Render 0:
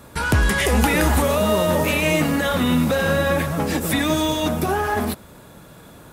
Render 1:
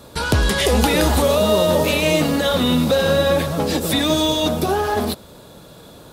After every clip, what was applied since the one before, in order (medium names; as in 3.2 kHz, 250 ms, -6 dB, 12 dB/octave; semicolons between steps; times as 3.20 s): graphic EQ 500/2000/4000 Hz +5/-5/+9 dB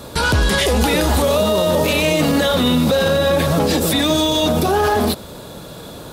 peak limiter -16 dBFS, peak gain reduction 11 dB; trim +8 dB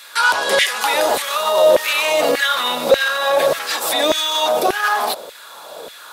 LFO high-pass saw down 1.7 Hz 460–2100 Hz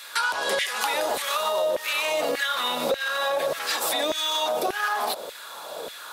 compression 6:1, threshold -21 dBFS, peak gain reduction 13.5 dB; trim -1.5 dB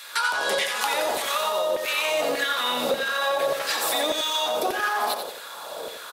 feedback delay 89 ms, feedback 39%, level -7 dB